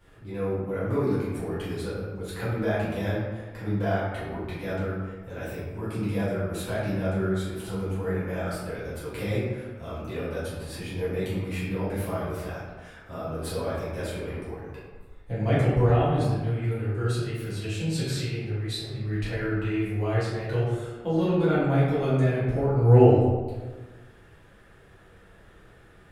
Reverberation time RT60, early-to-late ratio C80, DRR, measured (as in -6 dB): 1.4 s, 2.0 dB, -11.0 dB